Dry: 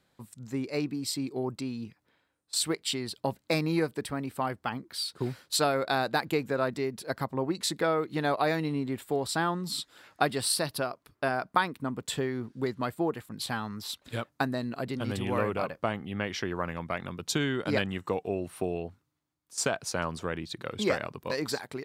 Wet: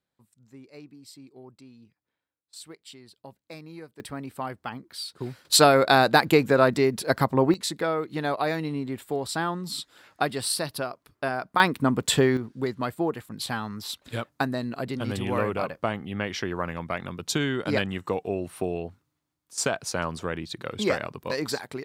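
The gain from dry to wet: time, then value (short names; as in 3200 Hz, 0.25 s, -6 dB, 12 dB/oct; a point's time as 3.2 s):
-15 dB
from 4 s -2 dB
from 5.45 s +9.5 dB
from 7.54 s +0.5 dB
from 11.6 s +10.5 dB
from 12.37 s +2.5 dB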